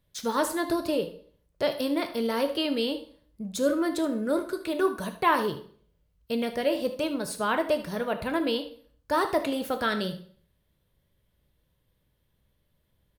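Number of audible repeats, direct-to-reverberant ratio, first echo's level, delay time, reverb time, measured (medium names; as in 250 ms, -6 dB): 1, 7.0 dB, -14.5 dB, 76 ms, 0.50 s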